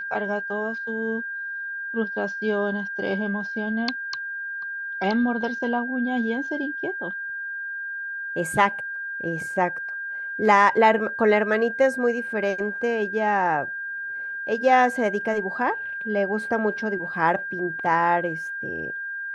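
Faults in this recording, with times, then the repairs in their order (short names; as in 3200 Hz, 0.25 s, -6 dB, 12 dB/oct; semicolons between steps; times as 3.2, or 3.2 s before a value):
tone 1600 Hz -29 dBFS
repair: notch 1600 Hz, Q 30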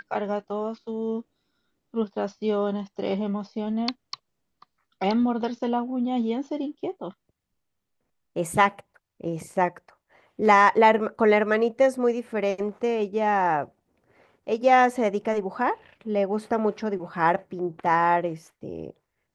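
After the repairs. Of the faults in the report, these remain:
none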